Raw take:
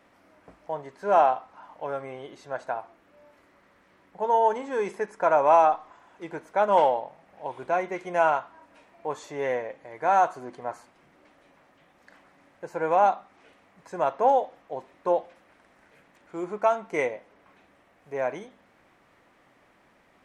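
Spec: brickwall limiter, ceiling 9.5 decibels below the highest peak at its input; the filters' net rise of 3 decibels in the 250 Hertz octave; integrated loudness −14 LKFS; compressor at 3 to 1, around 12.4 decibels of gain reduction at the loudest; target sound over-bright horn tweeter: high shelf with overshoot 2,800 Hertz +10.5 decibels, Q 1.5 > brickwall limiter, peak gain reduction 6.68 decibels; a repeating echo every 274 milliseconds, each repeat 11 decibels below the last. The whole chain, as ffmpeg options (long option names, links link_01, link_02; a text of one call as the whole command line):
ffmpeg -i in.wav -af "equalizer=frequency=250:width_type=o:gain=4.5,acompressor=threshold=-31dB:ratio=3,alimiter=level_in=3dB:limit=-24dB:level=0:latency=1,volume=-3dB,highshelf=frequency=2800:width_type=q:width=1.5:gain=10.5,aecho=1:1:274|548|822:0.282|0.0789|0.0221,volume=28.5dB,alimiter=limit=-3dB:level=0:latency=1" out.wav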